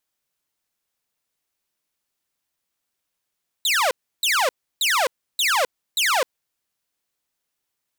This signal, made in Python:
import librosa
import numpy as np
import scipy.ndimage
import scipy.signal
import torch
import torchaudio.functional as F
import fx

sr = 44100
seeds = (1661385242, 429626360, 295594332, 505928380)

y = fx.laser_zaps(sr, level_db=-14.5, start_hz=4100.0, end_hz=470.0, length_s=0.26, wave='saw', shots=5, gap_s=0.32)